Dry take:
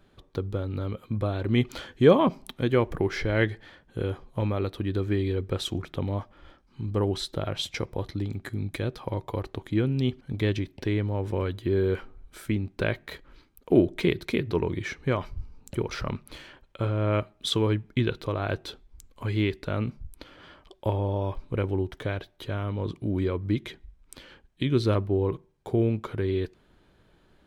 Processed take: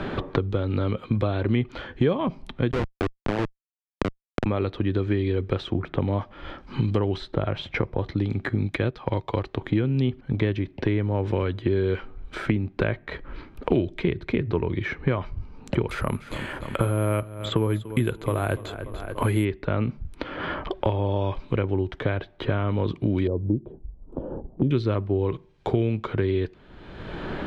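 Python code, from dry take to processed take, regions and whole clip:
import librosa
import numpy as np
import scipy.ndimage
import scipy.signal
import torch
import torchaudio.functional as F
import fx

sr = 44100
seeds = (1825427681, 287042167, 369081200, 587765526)

y = fx.chain(x, sr, fx.peak_eq(hz=490.0, db=7.5, octaves=0.25),
    fx.schmitt(flips_db=-19.0),
    fx.resample_bad(factor=2, down='none', up='zero_stuff'), at=(2.71, 4.46))
y = fx.chain(y, sr, fx.peak_eq(hz=5200.0, db=7.0, octaves=2.8),
    fx.upward_expand(threshold_db=-41.0, expansion=1.5), at=(8.66, 9.61))
y = fx.chain(y, sr, fx.resample_bad(factor=4, down='filtered', up='zero_stuff'),
    fx.echo_feedback(ms=291, feedback_pct=38, wet_db=-17.5), at=(15.89, 19.45))
y = fx.chain(y, sr, fx.cheby2_lowpass(hz=1900.0, order=4, stop_db=50),
    fx.gate_hold(open_db=-58.0, close_db=-60.0, hold_ms=71.0, range_db=-21, attack_ms=1.4, release_ms=100.0), at=(23.27, 24.71))
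y = scipy.signal.sosfilt(scipy.signal.butter(2, 2900.0, 'lowpass', fs=sr, output='sos'), y)
y = fx.band_squash(y, sr, depth_pct=100)
y = y * librosa.db_to_amplitude(2.5)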